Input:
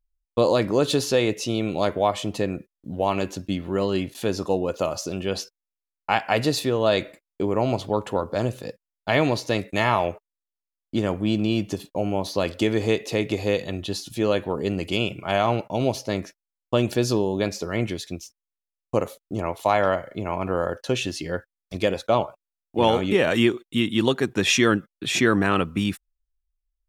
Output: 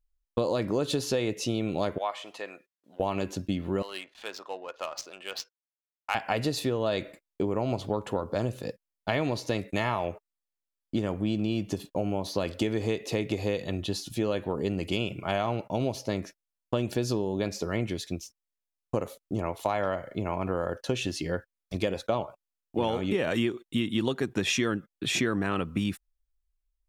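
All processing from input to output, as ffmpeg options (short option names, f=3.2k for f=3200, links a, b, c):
-filter_complex "[0:a]asettb=1/sr,asplit=3[a][b][c];[a]atrim=end=1.984[d];[b]atrim=start=1.98:end=3,asetpts=PTS-STARTPTS,afade=t=in:d=0.004:c=qsin,afade=t=out:st=1.016:d=0.004:c=qsin,acrossover=split=2600[e][f];[f]acompressor=threshold=-40dB:ratio=4:attack=1:release=60[g];[e][g]amix=inputs=2:normalize=0,highpass=940,highshelf=f=6.8k:g=-7[h];[c]atrim=start=2.996[i];[d][h]acrossfade=d=0.004:c1=hsin:c2=qsin[j];[j][i]acrossfade=d=0.004:c1=qsin:c2=hsin,asettb=1/sr,asplit=3[k][l][m];[k]atrim=end=3.824[n];[l]atrim=start=3.82:end=6.15,asetpts=PTS-STARTPTS,afade=t=in:d=0.004:c=qsin,afade=t=out:st=2.326:d=0.004:c=qsin,highpass=1.1k,adynamicsmooth=sensitivity=7:basefreq=1.7k[o];[m]atrim=start=6.146[p];[n][o]acrossfade=d=0.004:c1=hsin:c2=qsin[q];[q][p]acrossfade=d=0.004:c1=qsin:c2=hsin,lowshelf=f=440:g=3,acompressor=threshold=-22dB:ratio=4,volume=-2.5dB"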